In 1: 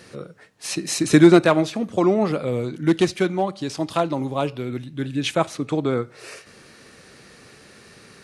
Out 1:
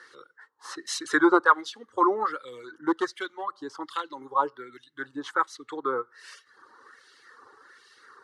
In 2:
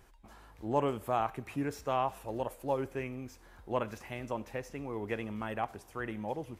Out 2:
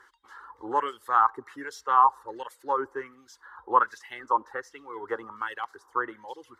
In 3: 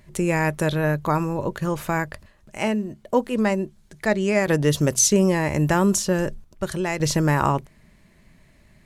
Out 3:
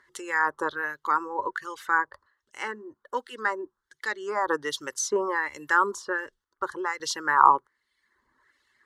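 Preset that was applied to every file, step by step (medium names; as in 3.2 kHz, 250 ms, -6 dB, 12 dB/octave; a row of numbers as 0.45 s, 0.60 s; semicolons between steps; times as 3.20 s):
reverb removal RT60 0.99 s; static phaser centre 660 Hz, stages 6; LFO band-pass sine 1.3 Hz 950–2800 Hz; normalise loudness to -27 LUFS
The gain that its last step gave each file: +9.5 dB, +20.5 dB, +10.5 dB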